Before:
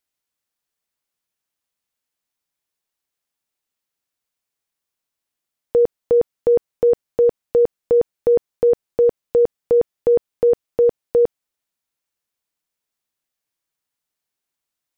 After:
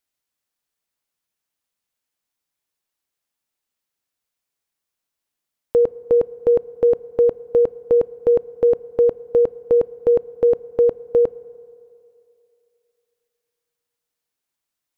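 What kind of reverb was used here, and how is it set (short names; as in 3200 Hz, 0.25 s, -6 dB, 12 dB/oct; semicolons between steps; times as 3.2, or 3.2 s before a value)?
FDN reverb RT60 2.7 s, low-frequency decay 0.75×, high-frequency decay 0.4×, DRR 19.5 dB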